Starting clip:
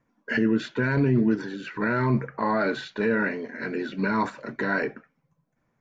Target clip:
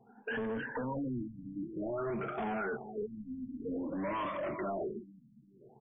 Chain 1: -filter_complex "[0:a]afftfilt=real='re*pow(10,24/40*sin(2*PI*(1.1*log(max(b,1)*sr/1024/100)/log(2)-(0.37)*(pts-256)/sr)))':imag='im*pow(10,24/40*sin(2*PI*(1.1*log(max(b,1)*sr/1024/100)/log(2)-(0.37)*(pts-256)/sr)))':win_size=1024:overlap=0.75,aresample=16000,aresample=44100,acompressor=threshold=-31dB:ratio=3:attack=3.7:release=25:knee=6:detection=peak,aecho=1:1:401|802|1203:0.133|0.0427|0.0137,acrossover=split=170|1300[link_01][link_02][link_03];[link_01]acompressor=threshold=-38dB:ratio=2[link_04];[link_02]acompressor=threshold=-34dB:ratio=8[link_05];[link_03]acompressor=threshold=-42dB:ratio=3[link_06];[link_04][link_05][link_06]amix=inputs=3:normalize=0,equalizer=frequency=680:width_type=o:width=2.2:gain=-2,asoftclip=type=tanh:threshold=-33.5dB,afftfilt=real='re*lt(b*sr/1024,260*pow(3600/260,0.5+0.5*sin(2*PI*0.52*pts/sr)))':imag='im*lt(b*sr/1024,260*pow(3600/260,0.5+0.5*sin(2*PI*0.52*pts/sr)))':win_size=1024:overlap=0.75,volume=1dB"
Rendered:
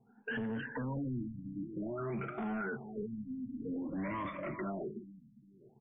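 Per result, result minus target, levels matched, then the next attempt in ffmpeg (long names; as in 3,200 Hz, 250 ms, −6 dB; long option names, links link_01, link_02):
downward compressor: peak gain reduction −5.5 dB; 500 Hz band −3.0 dB
-filter_complex "[0:a]afftfilt=real='re*pow(10,24/40*sin(2*PI*(1.1*log(max(b,1)*sr/1024/100)/log(2)-(0.37)*(pts-256)/sr)))':imag='im*pow(10,24/40*sin(2*PI*(1.1*log(max(b,1)*sr/1024/100)/log(2)-(0.37)*(pts-256)/sr)))':win_size=1024:overlap=0.75,aresample=16000,aresample=44100,acompressor=threshold=-39dB:ratio=3:attack=3.7:release=25:knee=6:detection=peak,aecho=1:1:401|802|1203:0.133|0.0427|0.0137,acrossover=split=170|1300[link_01][link_02][link_03];[link_01]acompressor=threshold=-38dB:ratio=2[link_04];[link_02]acompressor=threshold=-34dB:ratio=8[link_05];[link_03]acompressor=threshold=-42dB:ratio=3[link_06];[link_04][link_05][link_06]amix=inputs=3:normalize=0,equalizer=frequency=680:width_type=o:width=2.2:gain=-2,asoftclip=type=tanh:threshold=-33.5dB,afftfilt=real='re*lt(b*sr/1024,260*pow(3600/260,0.5+0.5*sin(2*PI*0.52*pts/sr)))':imag='im*lt(b*sr/1024,260*pow(3600/260,0.5+0.5*sin(2*PI*0.52*pts/sr)))':win_size=1024:overlap=0.75,volume=1dB"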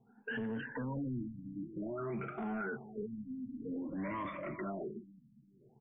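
500 Hz band −2.5 dB
-filter_complex "[0:a]afftfilt=real='re*pow(10,24/40*sin(2*PI*(1.1*log(max(b,1)*sr/1024/100)/log(2)-(0.37)*(pts-256)/sr)))':imag='im*pow(10,24/40*sin(2*PI*(1.1*log(max(b,1)*sr/1024/100)/log(2)-(0.37)*(pts-256)/sr)))':win_size=1024:overlap=0.75,aresample=16000,aresample=44100,acompressor=threshold=-39dB:ratio=3:attack=3.7:release=25:knee=6:detection=peak,aecho=1:1:401|802|1203:0.133|0.0427|0.0137,acrossover=split=170|1300[link_01][link_02][link_03];[link_01]acompressor=threshold=-38dB:ratio=2[link_04];[link_02]acompressor=threshold=-34dB:ratio=8[link_05];[link_03]acompressor=threshold=-42dB:ratio=3[link_06];[link_04][link_05][link_06]amix=inputs=3:normalize=0,equalizer=frequency=680:width_type=o:width=2.2:gain=9.5,asoftclip=type=tanh:threshold=-33.5dB,afftfilt=real='re*lt(b*sr/1024,260*pow(3600/260,0.5+0.5*sin(2*PI*0.52*pts/sr)))':imag='im*lt(b*sr/1024,260*pow(3600/260,0.5+0.5*sin(2*PI*0.52*pts/sr)))':win_size=1024:overlap=0.75,volume=1dB"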